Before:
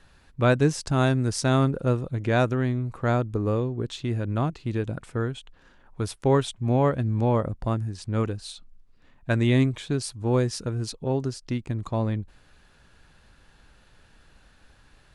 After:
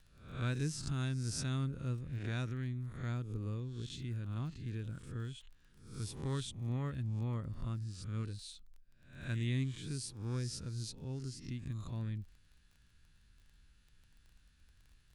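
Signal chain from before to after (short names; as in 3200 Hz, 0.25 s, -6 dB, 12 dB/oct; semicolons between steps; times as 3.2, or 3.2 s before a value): spectral swells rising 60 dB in 0.57 s; passive tone stack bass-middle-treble 6-0-2; crackle 21/s -55 dBFS; gain +2.5 dB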